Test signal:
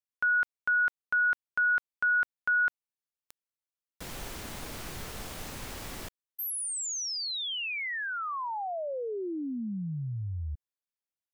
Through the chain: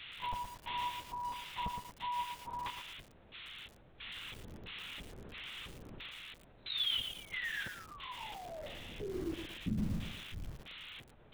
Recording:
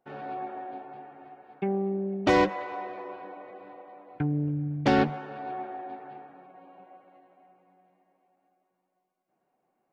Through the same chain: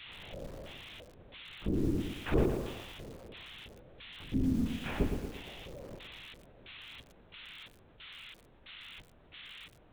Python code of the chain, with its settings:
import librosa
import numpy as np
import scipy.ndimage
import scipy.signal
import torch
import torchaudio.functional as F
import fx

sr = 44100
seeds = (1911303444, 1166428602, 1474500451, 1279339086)

y = fx.partial_stretch(x, sr, pct=77)
y = fx.dmg_buzz(y, sr, base_hz=400.0, harmonics=11, level_db=-46.0, tilt_db=0, odd_only=False)
y = fx.filter_lfo_bandpass(y, sr, shape='square', hz=1.5, low_hz=230.0, high_hz=3000.0, q=1.6)
y = fx.lpc_vocoder(y, sr, seeds[0], excitation='whisper', order=8)
y = fx.echo_crushed(y, sr, ms=115, feedback_pct=55, bits=8, wet_db=-6)
y = y * 10.0 ** (1.0 / 20.0)